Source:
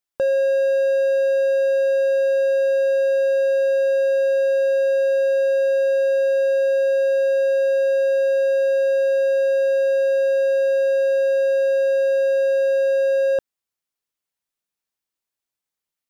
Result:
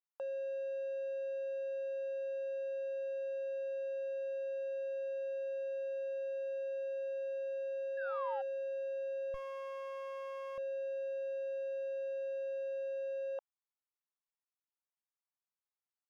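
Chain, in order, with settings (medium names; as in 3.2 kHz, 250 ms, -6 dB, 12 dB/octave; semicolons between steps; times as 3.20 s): 7.97–8.42 s: painted sound fall 760–1700 Hz -29 dBFS; in parallel at -11 dB: wavefolder -24 dBFS; on the sum: ladder band-pass 1.1 kHz, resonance 35%; 9.34–10.58 s: sliding maximum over 33 samples; trim -3 dB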